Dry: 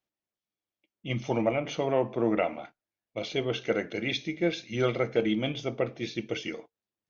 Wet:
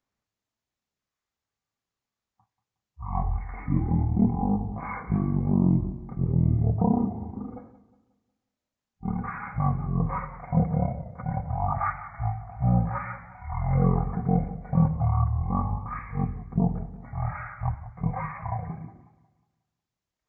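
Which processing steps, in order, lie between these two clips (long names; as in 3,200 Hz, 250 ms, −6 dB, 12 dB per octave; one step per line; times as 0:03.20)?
change of speed 0.35×
feedback echo with a swinging delay time 181 ms, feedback 40%, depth 111 cents, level −15.5 dB
level +3 dB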